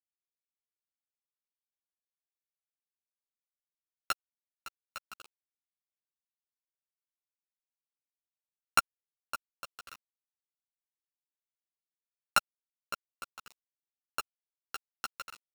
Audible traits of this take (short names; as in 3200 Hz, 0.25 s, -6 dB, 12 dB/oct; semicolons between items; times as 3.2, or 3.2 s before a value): a buzz of ramps at a fixed pitch in blocks of 32 samples; chopped level 0.81 Hz, depth 60%, duty 45%; a quantiser's noise floor 8-bit, dither none; a shimmering, thickened sound